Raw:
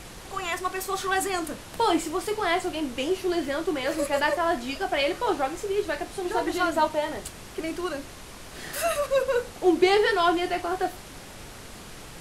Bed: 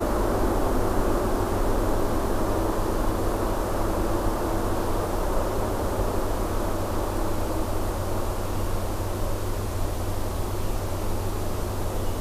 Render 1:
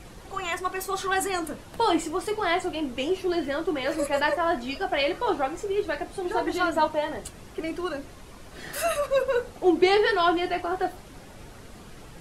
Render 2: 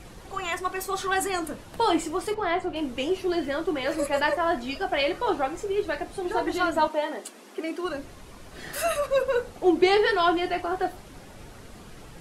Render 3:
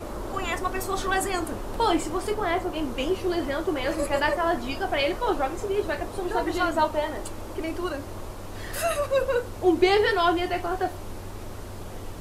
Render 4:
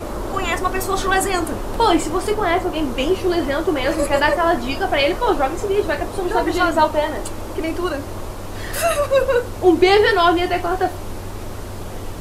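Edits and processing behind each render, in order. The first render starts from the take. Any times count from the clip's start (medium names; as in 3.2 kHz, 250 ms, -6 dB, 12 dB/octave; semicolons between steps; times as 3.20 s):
noise reduction 8 dB, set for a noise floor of -43 dBFS
2.34–2.76 s: low-pass 1.8 kHz 6 dB/octave; 6.88–7.85 s: brick-wall FIR high-pass 200 Hz
add bed -10.5 dB
trim +7.5 dB; peak limiter -3 dBFS, peak gain reduction 2 dB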